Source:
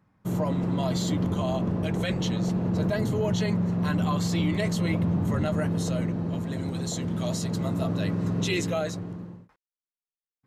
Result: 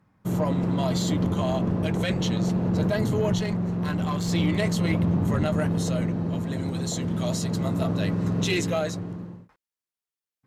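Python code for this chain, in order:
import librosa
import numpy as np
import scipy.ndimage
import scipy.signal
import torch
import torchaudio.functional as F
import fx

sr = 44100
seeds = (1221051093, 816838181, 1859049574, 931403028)

y = fx.halfwave_gain(x, sr, db=-7.0, at=(3.38, 4.28))
y = fx.cheby_harmonics(y, sr, harmonics=(4, 6), levels_db=(-19, -24), full_scale_db=-15.5)
y = y * librosa.db_to_amplitude(2.0)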